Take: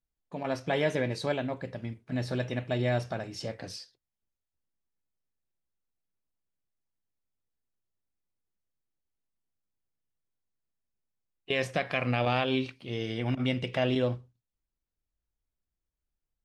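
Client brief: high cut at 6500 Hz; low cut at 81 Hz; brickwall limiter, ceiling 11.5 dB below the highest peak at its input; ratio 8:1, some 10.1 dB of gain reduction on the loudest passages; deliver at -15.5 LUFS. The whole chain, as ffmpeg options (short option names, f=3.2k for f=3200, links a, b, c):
-af "highpass=81,lowpass=6.5k,acompressor=threshold=-33dB:ratio=8,volume=25.5dB,alimiter=limit=-3dB:level=0:latency=1"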